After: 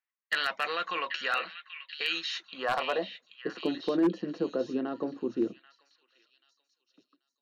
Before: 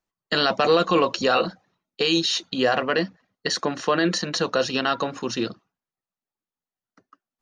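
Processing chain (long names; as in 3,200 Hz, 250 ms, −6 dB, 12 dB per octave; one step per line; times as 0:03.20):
band-pass filter sweep 2,000 Hz → 320 Hz, 0:02.30–0:03.49
echo through a band-pass that steps 785 ms, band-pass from 2,500 Hz, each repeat 0.7 octaves, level −6.5 dB
wave folding −18.5 dBFS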